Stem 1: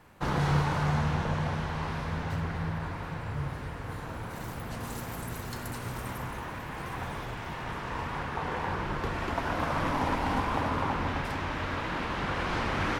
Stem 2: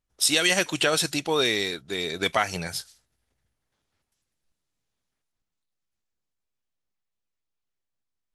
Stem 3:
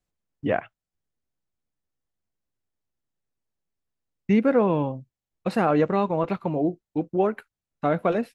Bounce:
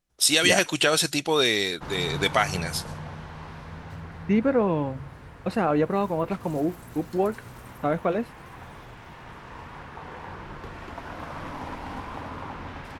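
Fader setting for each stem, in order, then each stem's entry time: -7.0 dB, +1.5 dB, -2.0 dB; 1.60 s, 0.00 s, 0.00 s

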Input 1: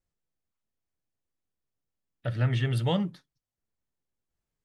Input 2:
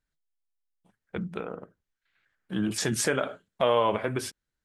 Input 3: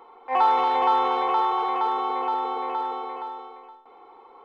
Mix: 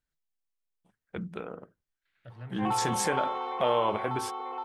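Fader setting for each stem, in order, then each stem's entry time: -17.5 dB, -3.5 dB, -10.5 dB; 0.00 s, 0.00 s, 2.30 s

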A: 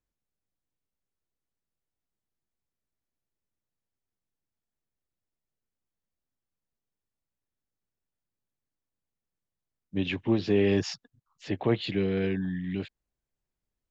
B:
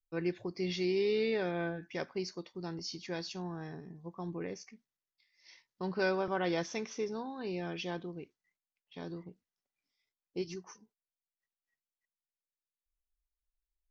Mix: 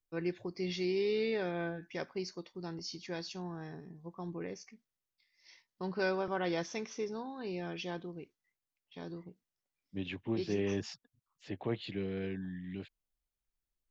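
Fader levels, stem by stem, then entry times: -10.0 dB, -1.5 dB; 0.00 s, 0.00 s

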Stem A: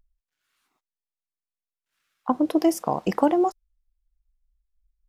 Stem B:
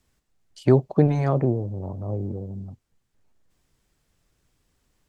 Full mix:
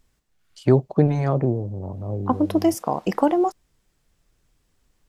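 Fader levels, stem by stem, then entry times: +1.0 dB, +0.5 dB; 0.00 s, 0.00 s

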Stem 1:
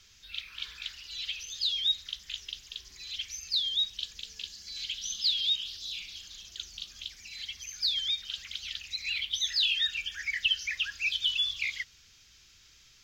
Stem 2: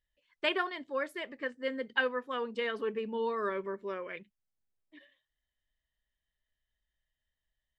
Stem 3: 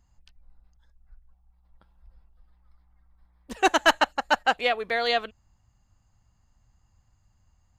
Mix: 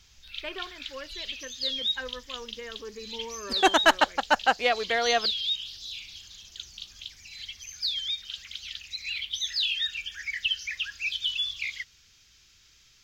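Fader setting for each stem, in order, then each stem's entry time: -0.5 dB, -7.0 dB, 0.0 dB; 0.00 s, 0.00 s, 0.00 s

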